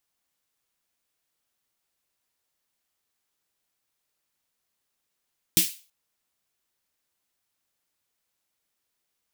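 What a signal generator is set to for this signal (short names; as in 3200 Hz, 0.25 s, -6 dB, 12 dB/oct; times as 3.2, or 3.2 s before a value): snare drum length 0.33 s, tones 180 Hz, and 320 Hz, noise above 2500 Hz, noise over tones 7 dB, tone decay 0.15 s, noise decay 0.35 s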